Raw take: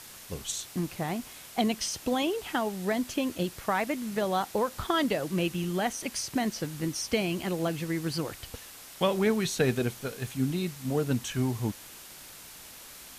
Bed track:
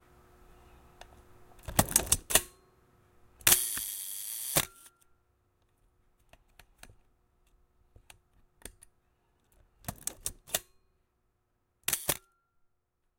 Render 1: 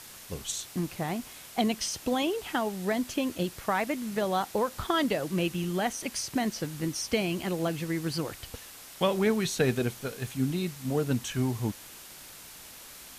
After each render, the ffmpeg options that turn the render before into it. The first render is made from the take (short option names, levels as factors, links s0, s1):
-af anull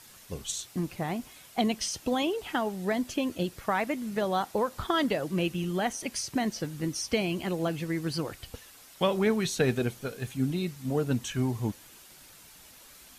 -af "afftdn=nr=7:nf=-48"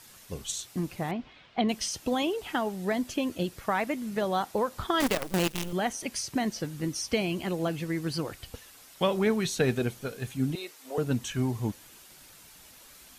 -filter_complex "[0:a]asettb=1/sr,asplit=3[s0][s1][s2];[s0]atrim=end=1.114[s3];[s1]atrim=start=1.11:end=1.69,asetpts=PTS-STARTPTS,afade=t=in:d=0.004:c=qsin,afade=t=out:st=0.576:d=0.004:c=qsin,lowpass=f=3800:w=0.5412,lowpass=f=3800:w=1.3066[s4];[s2]atrim=start=1.686[s5];[s3][s4]acrossfade=d=0.004:c1=hsin:c2=qsin[s6];[s6][s5]acrossfade=d=0.004:c1=qsin:c2=hsin,asettb=1/sr,asplit=3[s7][s8][s9];[s7]atrim=end=5.004[s10];[s8]atrim=start=5:end=5.73,asetpts=PTS-STARTPTS,afade=t=in:d=0.004:c=qsin,afade=t=out:st=0.726:d=0.004:c=qsin,acrusher=bits=5:dc=4:mix=0:aa=0.000001[s11];[s9]atrim=start=5.726[s12];[s10][s11]acrossfade=d=0.004:c1=hsin:c2=qsin[s13];[s13][s12]acrossfade=d=0.004:c1=qsin:c2=hsin,asettb=1/sr,asplit=3[s14][s15][s16];[s14]atrim=end=10.554[s17];[s15]atrim=start=10.55:end=10.98,asetpts=PTS-STARTPTS,afade=t=in:d=0.004:c=qsin,afade=t=out:st=0.426:d=0.004:c=qsin,highpass=f=420:w=0.5412,highpass=f=420:w=1.3066[s18];[s16]atrim=start=10.976[s19];[s17][s18]acrossfade=d=0.004:c1=hsin:c2=qsin[s20];[s20][s19]acrossfade=d=0.004:c1=qsin:c2=hsin"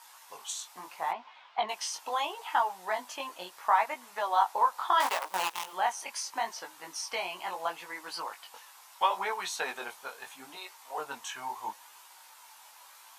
-af "flanger=delay=16:depth=6.3:speed=0.75,highpass=f=920:t=q:w=4.9"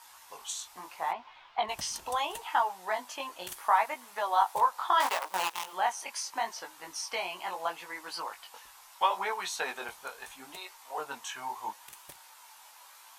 -filter_complex "[1:a]volume=0.0891[s0];[0:a][s0]amix=inputs=2:normalize=0"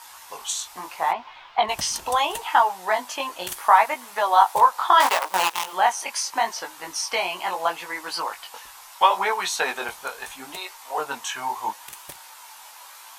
-af "volume=2.99"